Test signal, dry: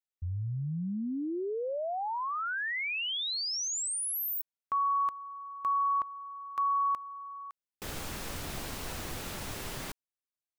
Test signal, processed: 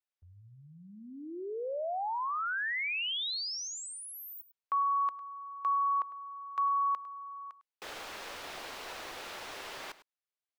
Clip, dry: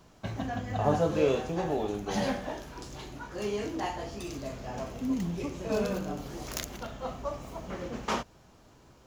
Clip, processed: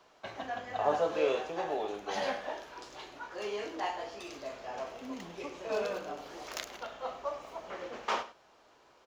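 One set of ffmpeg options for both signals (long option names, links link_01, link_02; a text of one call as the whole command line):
ffmpeg -i in.wav -filter_complex "[0:a]acrossover=split=390 5300:gain=0.0794 1 0.251[link_01][link_02][link_03];[link_01][link_02][link_03]amix=inputs=3:normalize=0,aecho=1:1:103:0.158" out.wav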